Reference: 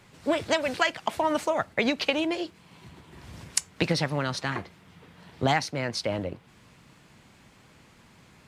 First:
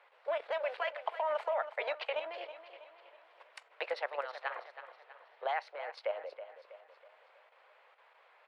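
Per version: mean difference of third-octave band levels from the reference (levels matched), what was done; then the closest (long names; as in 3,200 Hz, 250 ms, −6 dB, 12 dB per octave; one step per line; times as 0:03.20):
12.0 dB: Butterworth high-pass 500 Hz 48 dB per octave
output level in coarse steps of 10 dB
high-frequency loss of the air 470 metres
on a send: repeating echo 323 ms, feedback 45%, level −12 dB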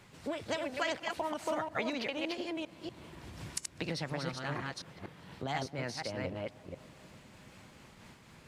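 7.0 dB: delay that plays each chunk backwards 241 ms, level −2 dB
downward compressor 2 to 1, threshold −37 dBFS, peak gain reduction 11 dB
feedback echo with a low-pass in the loop 201 ms, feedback 81%, low-pass 1,600 Hz, level −21 dB
amplitude modulation by smooth noise, depth 55%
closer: second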